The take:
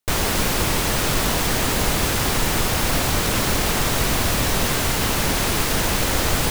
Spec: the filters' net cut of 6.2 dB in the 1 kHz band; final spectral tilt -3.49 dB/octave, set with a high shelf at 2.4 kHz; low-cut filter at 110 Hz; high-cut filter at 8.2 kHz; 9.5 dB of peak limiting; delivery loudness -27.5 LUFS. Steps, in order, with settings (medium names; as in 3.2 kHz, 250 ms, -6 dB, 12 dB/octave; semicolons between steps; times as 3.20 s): high-pass 110 Hz; low-pass 8.2 kHz; peaking EQ 1 kHz -7.5 dB; treble shelf 2.4 kHz -3.5 dB; trim +2 dB; peak limiter -19.5 dBFS